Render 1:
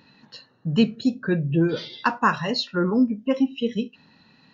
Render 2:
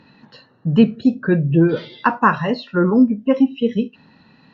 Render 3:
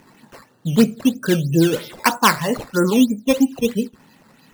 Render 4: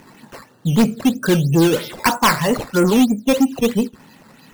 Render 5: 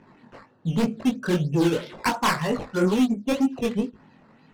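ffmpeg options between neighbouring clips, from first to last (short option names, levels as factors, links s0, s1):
-filter_complex "[0:a]aemphasis=mode=reproduction:type=75kf,acrossover=split=3300[s0][s1];[s1]acompressor=threshold=0.00224:ratio=4:attack=1:release=60[s2];[s0][s2]amix=inputs=2:normalize=0,volume=2.11"
-af "bass=f=250:g=-3,treble=f=4000:g=8,acrusher=samples=10:mix=1:aa=0.000001:lfo=1:lforange=10:lforate=3.1"
-af "asoftclip=type=tanh:threshold=0.211,volume=1.78"
-af "flanger=delay=18.5:depth=6.2:speed=2,adynamicsmooth=sensitivity=3:basefreq=2700,volume=0.631"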